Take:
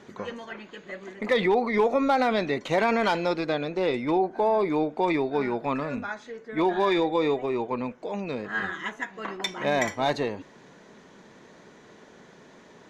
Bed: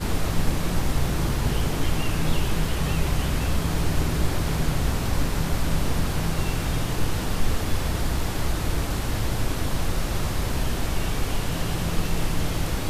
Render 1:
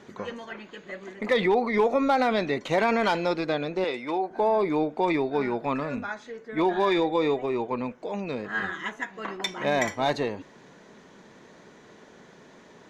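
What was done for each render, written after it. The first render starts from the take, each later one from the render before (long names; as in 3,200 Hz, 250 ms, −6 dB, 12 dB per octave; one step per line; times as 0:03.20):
0:03.84–0:04.31: high-pass filter 590 Hz 6 dB per octave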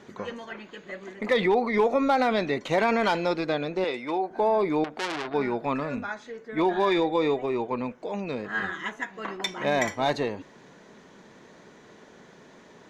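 0:04.84–0:05.34: saturating transformer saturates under 3,200 Hz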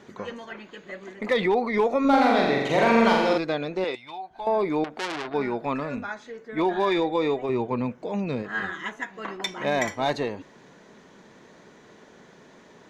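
0:02.00–0:03.38: flutter between parallel walls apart 7.5 metres, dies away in 1.1 s
0:03.95–0:04.47: drawn EQ curve 110 Hz 0 dB, 210 Hz −17 dB, 500 Hz −21 dB, 740 Hz −6 dB, 1,300 Hz −10 dB, 2,000 Hz −9 dB, 3,400 Hz +2 dB, 5,200 Hz −6 dB
0:07.49–0:08.43: parametric band 120 Hz +9 dB 2 octaves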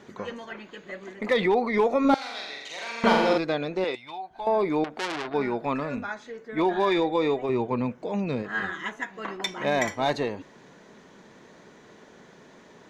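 0:02.14–0:03.04: resonant band-pass 5,600 Hz, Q 1.1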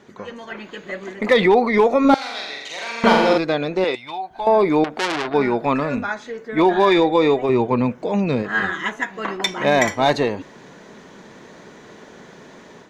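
automatic gain control gain up to 8.5 dB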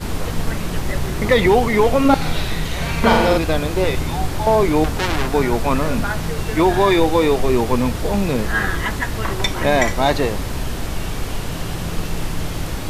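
mix in bed +1 dB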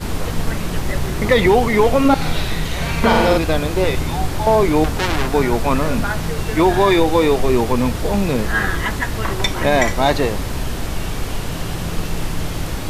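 level +1 dB
brickwall limiter −3 dBFS, peak gain reduction 2.5 dB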